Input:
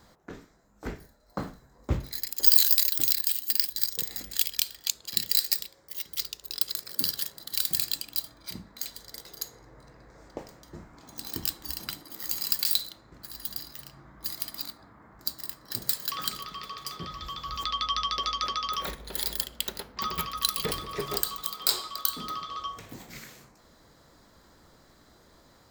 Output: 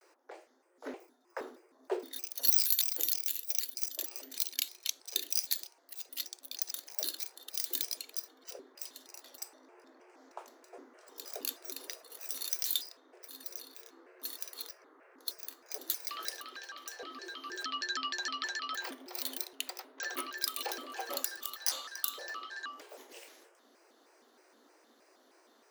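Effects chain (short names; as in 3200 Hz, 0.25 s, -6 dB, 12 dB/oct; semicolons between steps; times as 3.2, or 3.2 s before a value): frequency shift +260 Hz; shaped vibrato square 3.2 Hz, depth 250 cents; gain -7 dB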